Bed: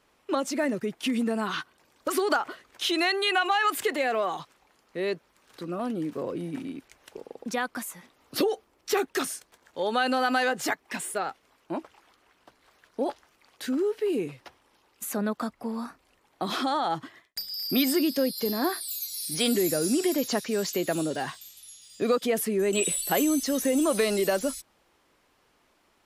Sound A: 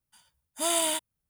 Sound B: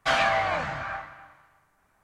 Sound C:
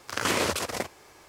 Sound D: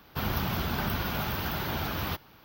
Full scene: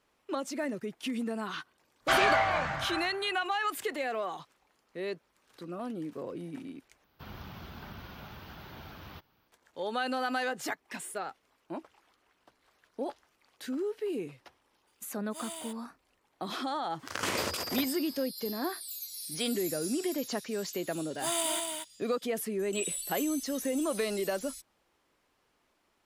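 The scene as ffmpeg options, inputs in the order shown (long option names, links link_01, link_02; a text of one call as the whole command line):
ffmpeg -i bed.wav -i cue0.wav -i cue1.wav -i cue2.wav -i cue3.wav -filter_complex "[1:a]asplit=2[link_01][link_02];[0:a]volume=-7dB[link_03];[4:a]acrossover=split=6300[link_04][link_05];[link_05]acompressor=threshold=-45dB:ratio=4:attack=1:release=60[link_06];[link_04][link_06]amix=inputs=2:normalize=0[link_07];[3:a]bandreject=frequency=60:width_type=h:width=6,bandreject=frequency=120:width_type=h:width=6,bandreject=frequency=180:width_type=h:width=6,bandreject=frequency=240:width_type=h:width=6,bandreject=frequency=300:width_type=h:width=6,bandreject=frequency=360:width_type=h:width=6,bandreject=frequency=420:width_type=h:width=6,bandreject=frequency=480:width_type=h:width=6[link_08];[link_02]aecho=1:1:233:0.562[link_09];[link_03]asplit=2[link_10][link_11];[link_10]atrim=end=7.044[link_12];[link_07]atrim=end=2.44,asetpts=PTS-STARTPTS,volume=-15dB[link_13];[link_11]atrim=start=9.476[link_14];[2:a]atrim=end=2.03,asetpts=PTS-STARTPTS,volume=-2dB,afade=type=in:duration=0.004:curve=hsin,afade=type=out:start_time=2.026:duration=0.004:curve=hsin,adelay=2020[link_15];[link_01]atrim=end=1.29,asetpts=PTS-STARTPTS,volume=-16dB,afade=type=in:duration=0.004:curve=hsin,afade=type=out:start_time=1.286:duration=0.004:curve=hsin,adelay=14740[link_16];[link_08]atrim=end=1.28,asetpts=PTS-STARTPTS,volume=-6dB,afade=type=in:duration=0.02,afade=type=out:start_time=1.26:duration=0.02,adelay=16980[link_17];[link_09]atrim=end=1.29,asetpts=PTS-STARTPTS,volume=-5dB,afade=type=in:duration=0.004:curve=hsin,afade=type=out:start_time=1.286:duration=0.004:curve=hsin,adelay=20620[link_18];[link_12][link_13]acrossfade=duration=0.004:curve1=hsin:curve2=hsin[link_19];[link_19][link_14]acrossfade=duration=0.004:curve1=hsin:curve2=hsin[link_20];[link_20][link_15][link_16][link_17][link_18]amix=inputs=5:normalize=0" out.wav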